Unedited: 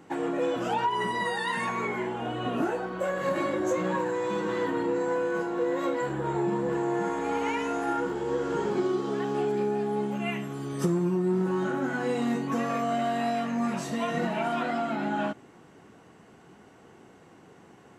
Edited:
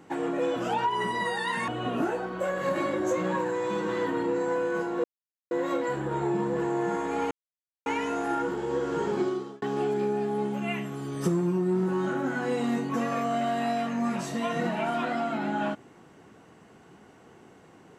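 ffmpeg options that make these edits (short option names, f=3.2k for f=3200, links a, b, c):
-filter_complex "[0:a]asplit=5[a][b][c][d][e];[a]atrim=end=1.682[f];[b]atrim=start=2.278:end=5.64,asetpts=PTS-STARTPTS,afade=t=out:st=3.358:d=0.004:c=hsin,apad=pad_dur=0.47[g];[c]atrim=start=5.64:end=7.44,asetpts=PTS-STARTPTS,afade=t=in:d=0.004:c=hsin,afade=t=out:st=1.796:d=0.004:c=hsin,apad=pad_dur=0.55[h];[d]atrim=start=7.44:end=9.2,asetpts=PTS-STARTPTS,afade=t=in:d=0.004:c=hsin,afade=t=out:st=1.37:d=0.39[i];[e]atrim=start=9.2,asetpts=PTS-STARTPTS,afade=t=in:d=0.004:c=hsin[j];[g][h][i][j]concat=n=4:v=0:a=1[k];[f][k]acrossfade=d=0.004:c1=hsin:c2=hsin"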